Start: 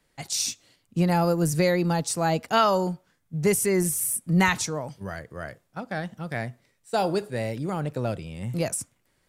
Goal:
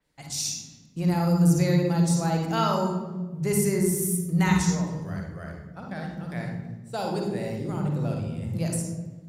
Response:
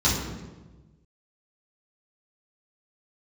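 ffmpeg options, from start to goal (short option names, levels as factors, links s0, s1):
-filter_complex "[0:a]asplit=2[s0][s1];[1:a]atrim=start_sample=2205,adelay=46[s2];[s1][s2]afir=irnorm=-1:irlink=0,volume=0.168[s3];[s0][s3]amix=inputs=2:normalize=0,adynamicequalizer=threshold=0.00891:dfrequency=5100:dqfactor=0.7:tfrequency=5100:tqfactor=0.7:attack=5:release=100:ratio=0.375:range=2:mode=boostabove:tftype=highshelf,volume=0.422"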